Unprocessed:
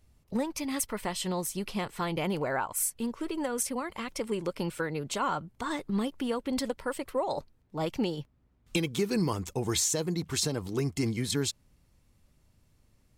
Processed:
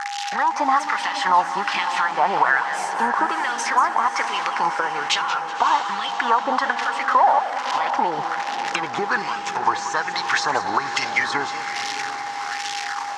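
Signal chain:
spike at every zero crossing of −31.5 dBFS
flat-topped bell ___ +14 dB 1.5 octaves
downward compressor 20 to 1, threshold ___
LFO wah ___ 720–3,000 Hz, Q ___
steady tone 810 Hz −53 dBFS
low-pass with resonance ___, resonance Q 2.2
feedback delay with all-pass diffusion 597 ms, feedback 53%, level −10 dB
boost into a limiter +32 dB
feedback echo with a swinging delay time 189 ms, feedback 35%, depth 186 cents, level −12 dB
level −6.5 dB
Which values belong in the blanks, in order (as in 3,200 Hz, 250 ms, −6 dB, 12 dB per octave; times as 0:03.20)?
1,200 Hz, −34 dBFS, 1.2 Hz, 2.7, 5,800 Hz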